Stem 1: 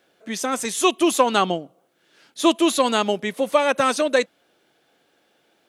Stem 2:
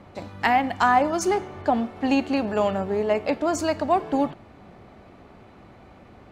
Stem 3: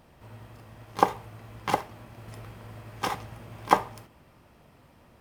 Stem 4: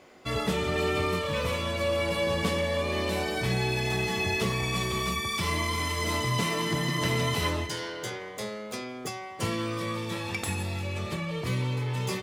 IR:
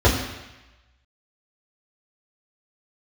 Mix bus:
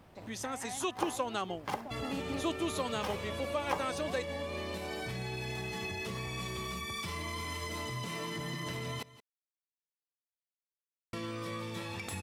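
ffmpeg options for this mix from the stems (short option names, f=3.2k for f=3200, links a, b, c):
-filter_complex "[0:a]volume=-10.5dB,asplit=2[a][b];[1:a]volume=-14dB,asplit=2[c][d];[d]volume=-8dB[e];[2:a]acontrast=83,volume=-11.5dB[f];[3:a]alimiter=limit=-22dB:level=0:latency=1:release=66,adelay=1650,volume=-4dB,asplit=3[g][h][i];[g]atrim=end=9.03,asetpts=PTS-STARTPTS,afade=t=out:st=9.026:d=0.004:c=hsin[j];[h]atrim=start=9.03:end=11.13,asetpts=PTS-STARTPTS,volume=0[k];[i]atrim=start=11.13,asetpts=PTS-STARTPTS,afade=t=in:d=0.004:c=hsin[l];[j][k][l]concat=n=3:v=0:a=1,asplit=2[m][n];[n]volume=-20.5dB[o];[b]apad=whole_len=278563[p];[c][p]sidechaincompress=threshold=-39dB:ratio=8:attack=16:release=501[q];[e][o]amix=inputs=2:normalize=0,aecho=0:1:174:1[r];[a][q][f][m][r]amix=inputs=5:normalize=0,acompressor=threshold=-41dB:ratio=1.5"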